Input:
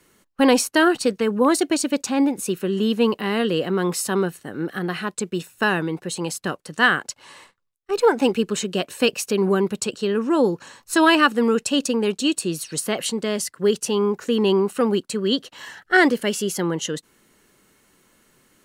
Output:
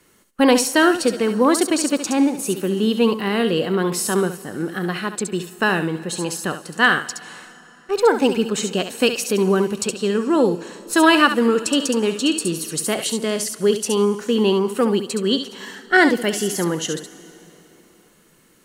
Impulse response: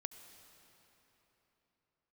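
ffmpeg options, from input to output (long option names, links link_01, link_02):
-filter_complex "[0:a]asplit=2[link_01][link_02];[1:a]atrim=start_sample=2205,highshelf=frequency=4400:gain=9.5,adelay=69[link_03];[link_02][link_03]afir=irnorm=-1:irlink=0,volume=-7.5dB[link_04];[link_01][link_04]amix=inputs=2:normalize=0,volume=1.5dB"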